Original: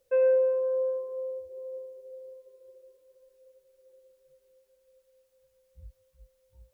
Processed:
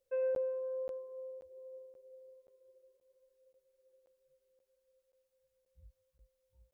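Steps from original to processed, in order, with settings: resonator 540 Hz, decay 0.53 s, mix 60%; crackling interface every 0.53 s, samples 512, zero, from 0.35; gain -3.5 dB

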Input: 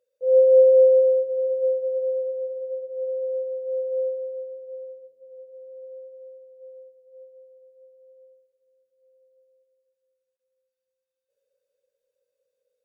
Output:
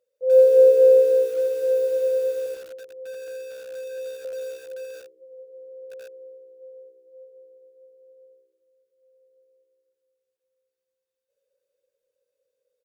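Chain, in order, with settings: 2.46–4.25 bell 530 Hz -10 dB 0.36 oct; frequency-shifting echo 89 ms, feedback 45%, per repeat -65 Hz, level -20.5 dB; lo-fi delay 81 ms, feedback 35%, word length 7-bit, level -3.5 dB

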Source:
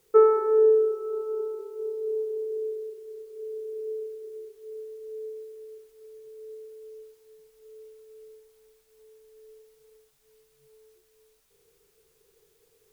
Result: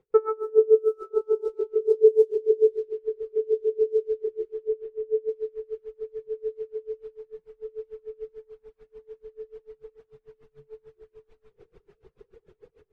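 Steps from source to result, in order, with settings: reverb removal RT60 0.93 s; low-pass opened by the level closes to 1700 Hz, open at -26 dBFS; low shelf 440 Hz +7 dB; AGC gain up to 16 dB; 4.68–5.29 air absorption 270 m; reverb RT60 1.1 s, pre-delay 75 ms, DRR 9.5 dB; dB-linear tremolo 6.8 Hz, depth 29 dB

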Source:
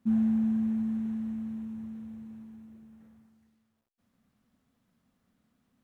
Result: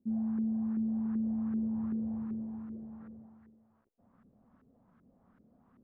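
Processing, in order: reverse; compressor 20:1, threshold -38 dBFS, peak gain reduction 15.5 dB; reverse; LFO low-pass saw up 2.6 Hz 370–1500 Hz; gain +6.5 dB

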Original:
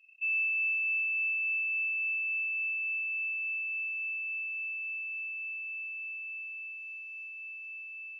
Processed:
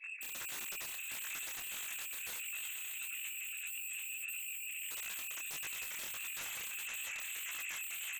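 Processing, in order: sine-wave speech; 2.38–4.89 elliptic high-pass 2600 Hz, stop band 40 dB; diffused feedback echo 0.536 s, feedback 51%, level -5 dB; reverb removal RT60 1.1 s; comb 3.5 ms, depth 92%; compressor 6:1, threshold -33 dBFS, peak gain reduction 11.5 dB; limiter -34.5 dBFS, peak gain reduction 8.5 dB; sine folder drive 16 dB, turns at -34.5 dBFS; detuned doubles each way 55 cents; gain -1 dB

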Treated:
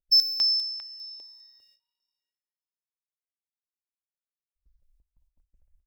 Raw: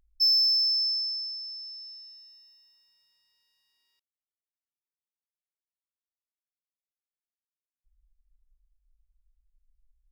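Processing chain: gate with hold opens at -59 dBFS; small resonant body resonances 560/930 Hz, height 8 dB, ringing for 50 ms; time stretch by phase-locked vocoder 0.58×; tape echo 0.199 s, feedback 70%, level -21 dB, low-pass 4300 Hz; step phaser 5 Hz 270–6900 Hz; gain +5 dB

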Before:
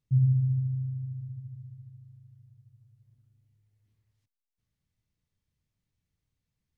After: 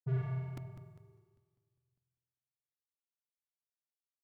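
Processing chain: HPF 140 Hz 24 dB/oct; tempo 1.6×; soft clip -33.5 dBFS, distortion -8 dB; power-law curve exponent 2; on a send: flutter echo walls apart 8.2 m, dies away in 1.4 s; on the sum: FDN reverb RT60 1.1 s, low-frequency decay 1×, high-frequency decay 0.6×, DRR 2.5 dB; crackling interface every 0.20 s, samples 128, repeat, from 0.57; gain +4 dB

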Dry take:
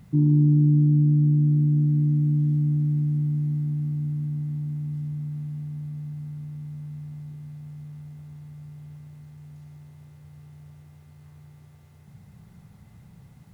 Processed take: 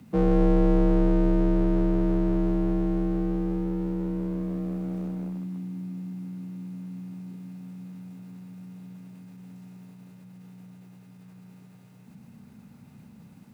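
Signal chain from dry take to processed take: one-sided fold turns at -29 dBFS; frequency shift +35 Hz; formant shift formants +2 st

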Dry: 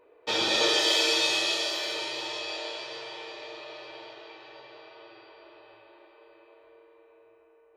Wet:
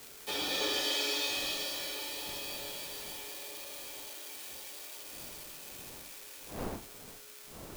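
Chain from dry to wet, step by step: switching spikes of -26 dBFS; wind noise 600 Hz -43 dBFS; frequency shift -39 Hz; gain -9 dB

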